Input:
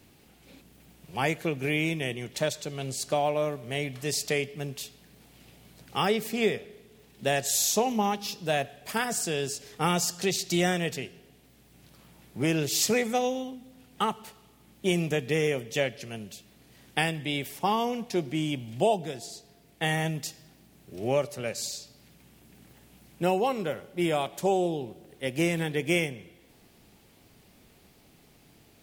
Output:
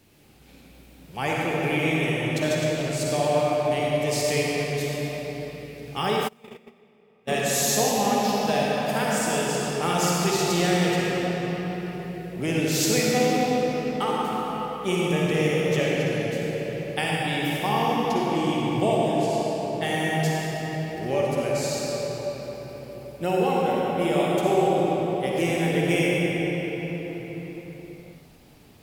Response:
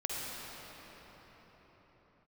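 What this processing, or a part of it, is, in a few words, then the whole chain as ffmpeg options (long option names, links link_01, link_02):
cathedral: -filter_complex "[1:a]atrim=start_sample=2205[link_01];[0:a][link_01]afir=irnorm=-1:irlink=0,asplit=3[link_02][link_03][link_04];[link_02]afade=type=out:start_time=6.27:duration=0.02[link_05];[link_03]agate=range=-31dB:threshold=-18dB:ratio=16:detection=peak,afade=type=in:start_time=6.27:duration=0.02,afade=type=out:start_time=7.27:duration=0.02[link_06];[link_04]afade=type=in:start_time=7.27:duration=0.02[link_07];[link_05][link_06][link_07]amix=inputs=3:normalize=0"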